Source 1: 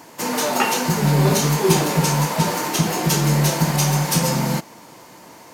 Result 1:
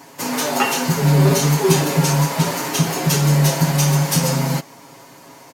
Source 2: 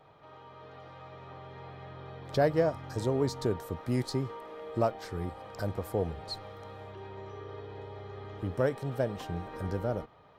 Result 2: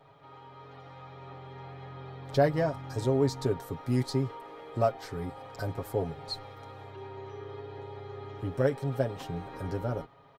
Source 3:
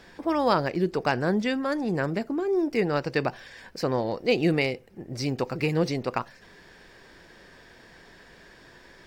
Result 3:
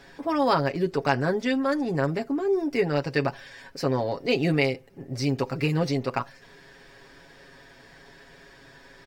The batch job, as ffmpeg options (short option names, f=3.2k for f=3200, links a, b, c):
-af "aecho=1:1:7.3:0.71,volume=-1dB"